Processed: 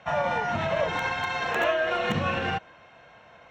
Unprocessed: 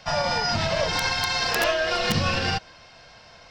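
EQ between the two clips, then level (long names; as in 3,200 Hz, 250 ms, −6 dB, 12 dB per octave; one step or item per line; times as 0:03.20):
moving average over 9 samples
high-pass filter 170 Hz 6 dB per octave
0.0 dB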